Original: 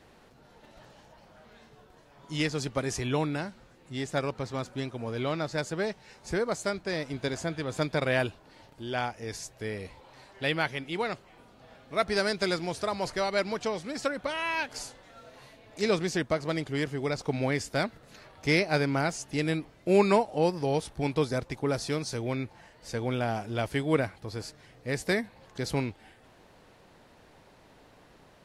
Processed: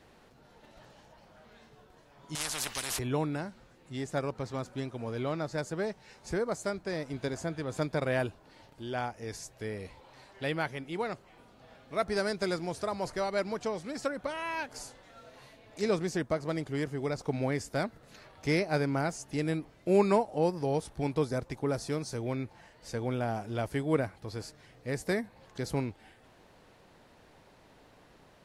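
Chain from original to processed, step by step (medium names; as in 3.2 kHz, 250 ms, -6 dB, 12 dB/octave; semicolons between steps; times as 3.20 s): dynamic bell 3.2 kHz, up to -7 dB, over -46 dBFS, Q 0.77; 2.35–2.99 s: spectrum-flattening compressor 10:1; trim -2 dB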